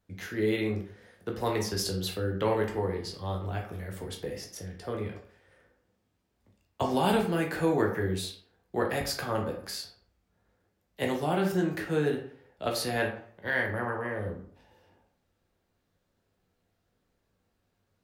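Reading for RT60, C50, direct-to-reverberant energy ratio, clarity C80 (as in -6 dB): 0.55 s, 7.0 dB, 1.0 dB, 11.5 dB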